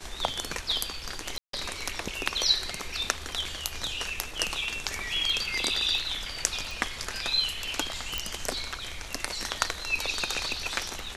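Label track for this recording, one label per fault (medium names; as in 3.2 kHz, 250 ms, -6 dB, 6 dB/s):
1.380000	1.530000	dropout 153 ms
6.710000	6.710000	pop
8.180000	8.180000	pop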